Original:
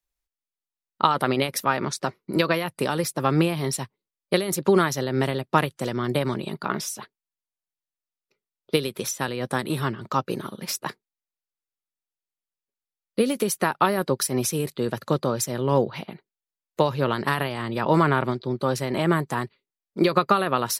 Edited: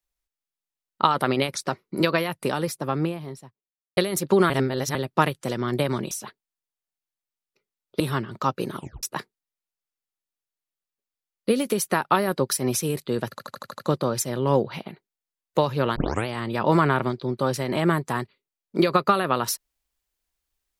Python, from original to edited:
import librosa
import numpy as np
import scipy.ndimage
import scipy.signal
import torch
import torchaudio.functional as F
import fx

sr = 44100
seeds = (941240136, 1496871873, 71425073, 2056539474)

y = fx.studio_fade_out(x, sr, start_s=2.62, length_s=1.71)
y = fx.edit(y, sr, fx.cut(start_s=1.55, length_s=0.36),
    fx.reverse_span(start_s=4.86, length_s=0.45),
    fx.cut(start_s=6.47, length_s=0.39),
    fx.cut(start_s=8.75, length_s=0.95),
    fx.tape_stop(start_s=10.47, length_s=0.26),
    fx.stutter(start_s=15.01, slice_s=0.08, count=7),
    fx.tape_start(start_s=17.18, length_s=0.31), tone=tone)